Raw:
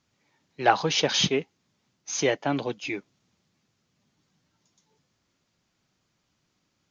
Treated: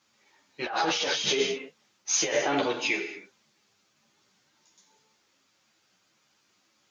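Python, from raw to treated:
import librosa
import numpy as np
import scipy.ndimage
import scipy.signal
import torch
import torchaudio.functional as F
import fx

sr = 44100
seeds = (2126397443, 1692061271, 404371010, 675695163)

y = fx.highpass(x, sr, hz=620.0, slope=6)
y = fx.rev_gated(y, sr, seeds[0], gate_ms=320, shape='falling', drr_db=4.5)
y = fx.over_compress(y, sr, threshold_db=-30.0, ratio=-1.0)
y = fx.ensemble(y, sr)
y = y * 10.0 ** (6.0 / 20.0)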